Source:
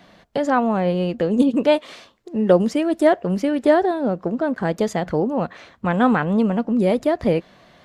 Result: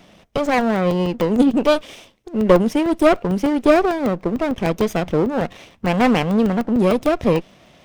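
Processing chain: minimum comb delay 0.35 ms; crackling interface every 0.15 s, samples 64, zero, from 0.46; gain +2.5 dB

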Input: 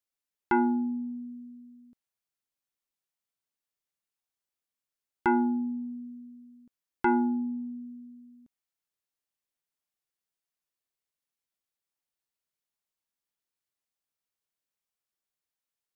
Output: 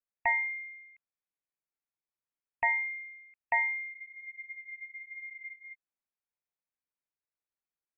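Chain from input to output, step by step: speed mistake 7.5 ips tape played at 15 ips; inverted band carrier 2600 Hz; spectral freeze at 3.94, 1.78 s; gain -2.5 dB

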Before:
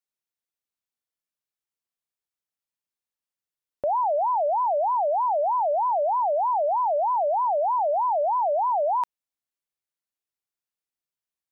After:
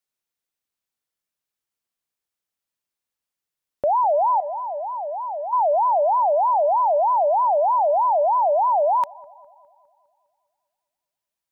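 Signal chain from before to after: 4.4–5.53 expander -16 dBFS; dark delay 0.204 s, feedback 54%, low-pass 880 Hz, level -21 dB; gain +4.5 dB

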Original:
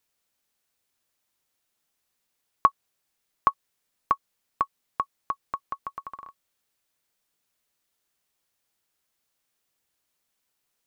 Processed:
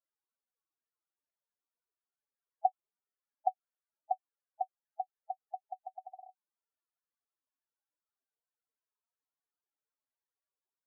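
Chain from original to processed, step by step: mistuned SSB -360 Hz 560–2400 Hz; loudest bins only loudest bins 8; gain -8 dB

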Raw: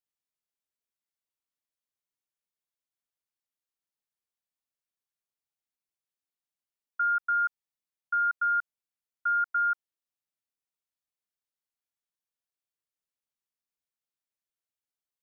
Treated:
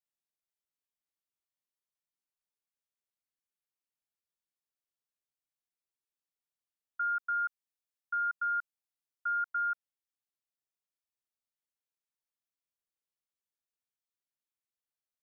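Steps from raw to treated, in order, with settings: 7.03–9.51 tone controls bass -6 dB, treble +3 dB; gain -5.5 dB

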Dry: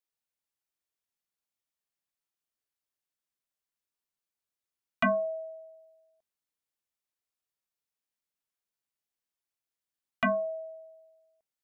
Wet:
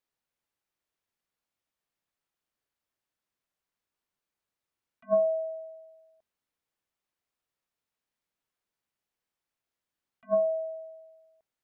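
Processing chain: high shelf 3800 Hz -10 dB; attack slew limiter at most 580 dB/s; gain +7 dB

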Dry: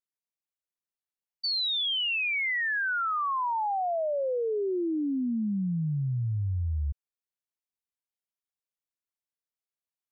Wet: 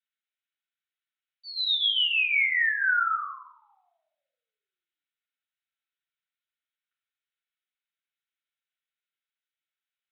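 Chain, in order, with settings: Chebyshev band-pass 1300–3900 Hz, order 5; in parallel at -2 dB: compressor, threshold -42 dBFS, peak gain reduction 13 dB; on the sum: shoebox room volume 2000 m³, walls furnished, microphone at 3.4 m

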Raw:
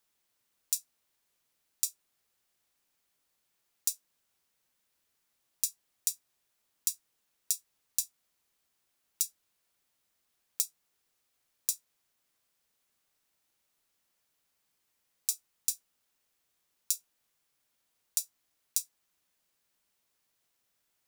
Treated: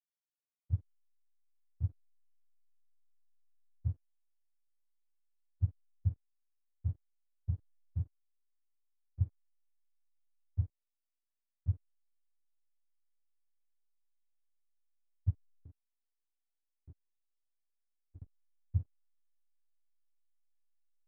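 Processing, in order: spectrum mirrored in octaves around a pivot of 640 Hz; 15.31–18.22 compressor 20:1, threshold -58 dBFS, peak gain reduction 27 dB; backlash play -56.5 dBFS; gain +7 dB

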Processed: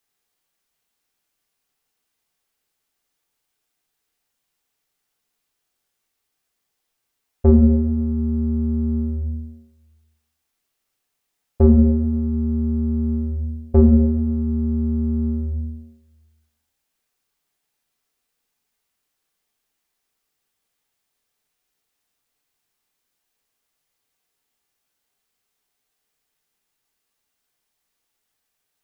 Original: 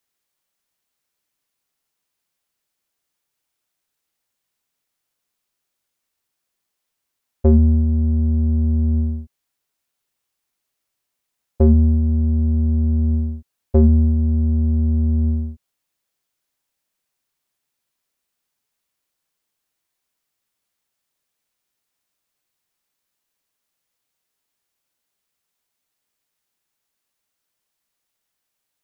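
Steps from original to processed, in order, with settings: reverb RT60 1.1 s, pre-delay 3 ms, DRR 1.5 dB

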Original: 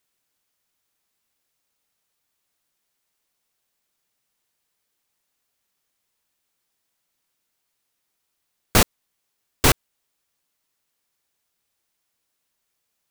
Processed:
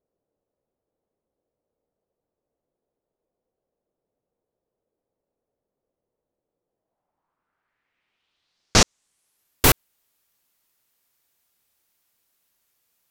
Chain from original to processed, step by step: in parallel at -0.5 dB: limiter -12.5 dBFS, peak gain reduction 9.5 dB; on the sum: low-pass sweep 520 Hz -> 15000 Hz, 6.72–9.57; gain -3 dB

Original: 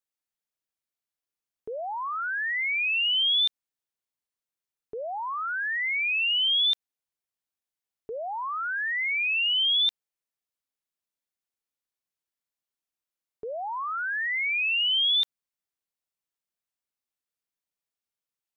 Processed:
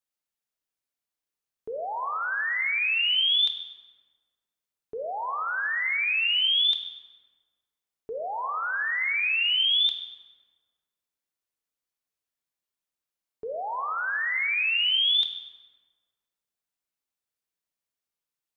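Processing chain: plate-style reverb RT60 1.7 s, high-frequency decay 0.55×, DRR 6 dB

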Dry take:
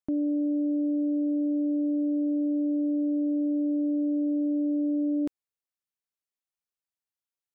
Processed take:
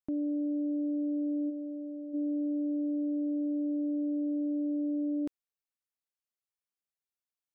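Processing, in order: 1.49–2.13 bell 130 Hz -> 210 Hz -11.5 dB 2.4 oct; gain -5 dB

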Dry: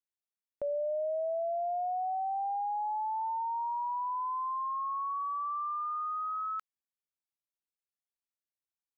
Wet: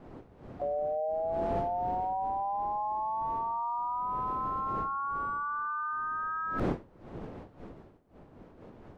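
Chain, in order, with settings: wind noise 430 Hz -44 dBFS; harmoniser -5 st -15 dB, +4 st -8 dB

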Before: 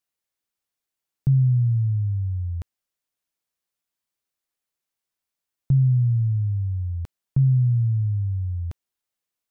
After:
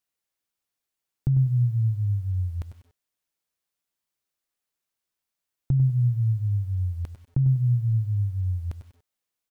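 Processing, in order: dynamic EQ 200 Hz, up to -6 dB, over -33 dBFS, Q 0.83; echo 0.106 s -16.5 dB; lo-fi delay 97 ms, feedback 35%, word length 9-bit, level -10.5 dB

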